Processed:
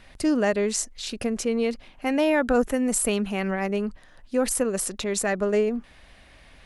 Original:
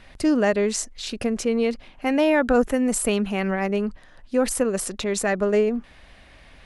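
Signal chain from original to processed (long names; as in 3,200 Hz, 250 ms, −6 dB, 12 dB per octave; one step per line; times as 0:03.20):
high-shelf EQ 7,300 Hz +6 dB
level −2.5 dB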